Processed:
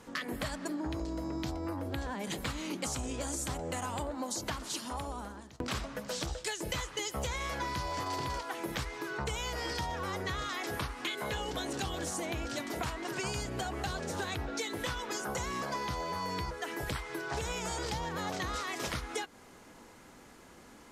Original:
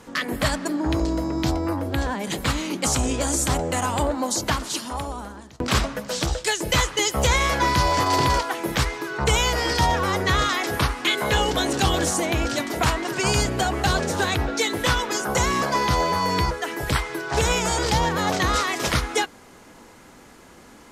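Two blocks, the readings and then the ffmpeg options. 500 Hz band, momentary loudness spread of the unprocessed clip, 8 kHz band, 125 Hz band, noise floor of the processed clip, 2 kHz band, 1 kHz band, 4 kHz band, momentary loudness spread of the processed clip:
-13.0 dB, 6 LU, -13.5 dB, -14.5 dB, -55 dBFS, -13.5 dB, -14.0 dB, -14.0 dB, 4 LU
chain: -af "acompressor=threshold=0.0501:ratio=6,volume=0.447"

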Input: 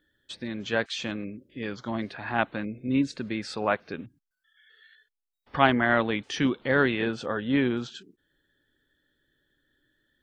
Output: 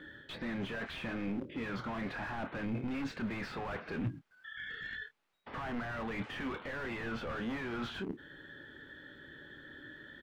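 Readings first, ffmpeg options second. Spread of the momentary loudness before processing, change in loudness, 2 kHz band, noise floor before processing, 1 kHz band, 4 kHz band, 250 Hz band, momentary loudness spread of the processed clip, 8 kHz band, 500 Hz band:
15 LU, -12.0 dB, -10.0 dB, -85 dBFS, -12.5 dB, -11.0 dB, -10.0 dB, 13 LU, under -15 dB, -13.0 dB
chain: -filter_complex "[0:a]asplit=2[s0][s1];[s1]acrusher=bits=5:dc=4:mix=0:aa=0.000001,volume=0.251[s2];[s0][s2]amix=inputs=2:normalize=0,acrossover=split=770|3100|6700[s3][s4][s5][s6];[s3]acompressor=threshold=0.0178:ratio=4[s7];[s4]acompressor=threshold=0.0316:ratio=4[s8];[s5]acompressor=threshold=0.00224:ratio=4[s9];[s6]acompressor=threshold=0.00178:ratio=4[s10];[s7][s8][s9][s10]amix=inputs=4:normalize=0,asplit=2[s11][s12];[s12]highpass=f=720:p=1,volume=79.4,asoftclip=type=tanh:threshold=0.188[s13];[s11][s13]amix=inputs=2:normalize=0,lowpass=f=1900:p=1,volume=0.501,areverse,acompressor=threshold=0.0224:ratio=10,areverse,bass=f=250:g=10,treble=f=4000:g=-10,asplit=2[s14][s15];[s15]adelay=26,volume=0.299[s16];[s14][s16]amix=inputs=2:normalize=0,volume=0.473"

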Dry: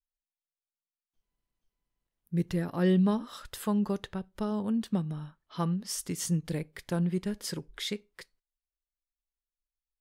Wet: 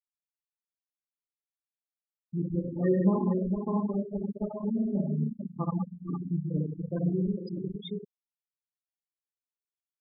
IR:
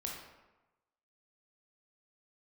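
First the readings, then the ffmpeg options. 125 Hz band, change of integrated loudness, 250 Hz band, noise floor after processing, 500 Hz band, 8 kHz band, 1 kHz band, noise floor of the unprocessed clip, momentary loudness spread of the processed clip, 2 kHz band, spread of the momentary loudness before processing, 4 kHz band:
+1.0 dB, +0.5 dB, +1.0 dB, under -85 dBFS, +2.5 dB, under -40 dB, -1.0 dB, under -85 dBFS, 11 LU, under -10 dB, 12 LU, under -10 dB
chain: -filter_complex "[0:a]aecho=1:1:456:0.501[s0];[1:a]atrim=start_sample=2205,asetrate=34398,aresample=44100[s1];[s0][s1]afir=irnorm=-1:irlink=0,aresample=32000,aresample=44100,aeval=exprs='val(0)*gte(abs(val(0)),0.0211)':c=same,afftfilt=real='re*gte(hypot(re,im),0.0708)':imag='im*gte(hypot(re,im),0.0708)':win_size=1024:overlap=0.75"

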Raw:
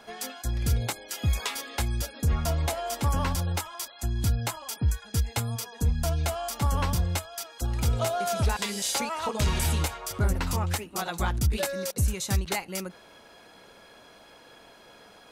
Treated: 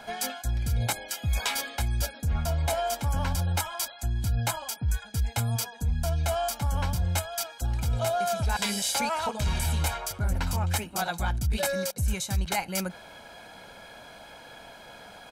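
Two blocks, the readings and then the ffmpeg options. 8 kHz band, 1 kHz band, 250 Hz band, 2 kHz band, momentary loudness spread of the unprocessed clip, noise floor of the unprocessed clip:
+0.5 dB, +1.5 dB, -2.0 dB, +1.5 dB, 6 LU, -53 dBFS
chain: -af "aecho=1:1:1.3:0.48,areverse,acompressor=threshold=0.0355:ratio=5,areverse,volume=1.68"

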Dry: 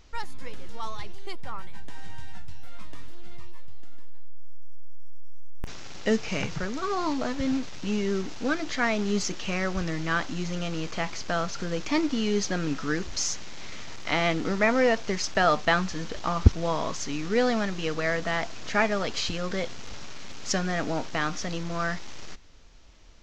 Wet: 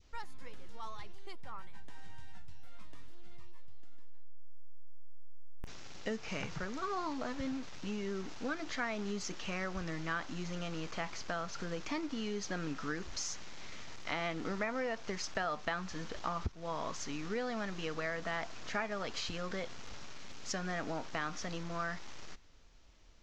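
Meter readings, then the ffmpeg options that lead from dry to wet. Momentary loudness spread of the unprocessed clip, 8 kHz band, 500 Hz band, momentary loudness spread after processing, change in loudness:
18 LU, no reading, -12.0 dB, 14 LU, -11.5 dB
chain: -af "acompressor=threshold=0.0501:ratio=6,adynamicequalizer=threshold=0.00631:dfrequency=1200:dqfactor=0.8:tfrequency=1200:tqfactor=0.8:attack=5:release=100:ratio=0.375:range=2:mode=boostabove:tftype=bell,volume=0.376"

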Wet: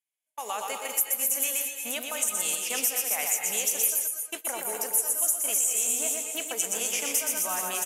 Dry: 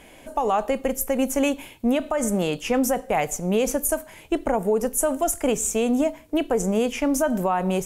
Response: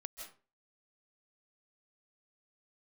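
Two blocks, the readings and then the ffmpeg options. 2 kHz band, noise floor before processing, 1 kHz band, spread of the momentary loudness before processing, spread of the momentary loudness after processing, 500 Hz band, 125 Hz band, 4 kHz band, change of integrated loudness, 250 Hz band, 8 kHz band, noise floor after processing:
-2.0 dB, -48 dBFS, -10.0 dB, 4 LU, 8 LU, -16.0 dB, under -25 dB, +2.0 dB, -2.0 dB, -23.0 dB, +5.5 dB, -52 dBFS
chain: -filter_complex "[0:a]aecho=1:1:120|258|416.7|599.2|809.1:0.631|0.398|0.251|0.158|0.1,agate=range=0.00631:threshold=0.0708:ratio=16:detection=peak,highpass=f=1300:p=1,crystalizer=i=7:c=0,acompressor=threshold=0.2:ratio=6[s0];[1:a]atrim=start_sample=2205,afade=t=out:st=0.21:d=0.01,atrim=end_sample=9702,asetrate=29547,aresample=44100[s1];[s0][s1]afir=irnorm=-1:irlink=0,volume=0.501"

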